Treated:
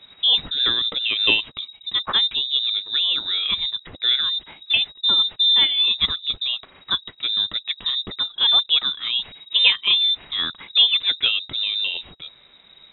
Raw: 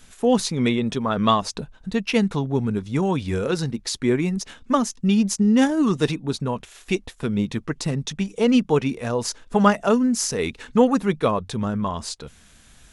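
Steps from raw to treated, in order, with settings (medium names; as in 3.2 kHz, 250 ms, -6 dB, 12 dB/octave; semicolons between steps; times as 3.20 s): frequency inversion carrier 3.8 kHz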